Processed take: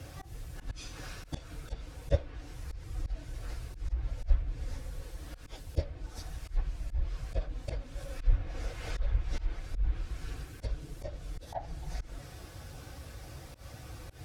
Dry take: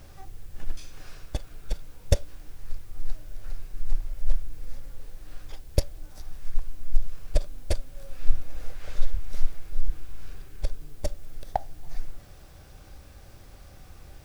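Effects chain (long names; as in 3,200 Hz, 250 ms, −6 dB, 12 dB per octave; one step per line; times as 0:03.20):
random phases in long frames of 50 ms
high-pass filter 53 Hz 12 dB per octave
notch comb filter 200 Hz
treble cut that deepens with the level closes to 2,600 Hz, closed at −26.5 dBFS
volume swells 120 ms
level +5.5 dB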